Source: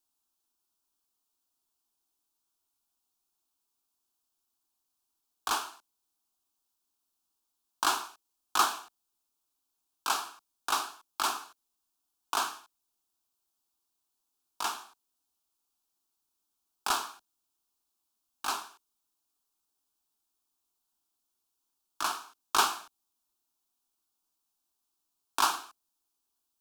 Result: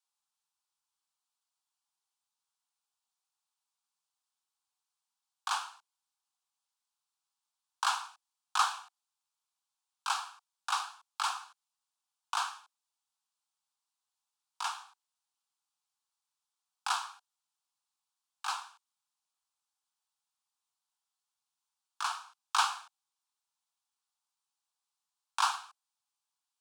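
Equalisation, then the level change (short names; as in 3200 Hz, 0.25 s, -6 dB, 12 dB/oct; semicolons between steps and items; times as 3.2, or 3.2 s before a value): polynomial smoothing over 9 samples; steep high-pass 740 Hz 72 dB/oct; bell 6100 Hz -2.5 dB; -2.0 dB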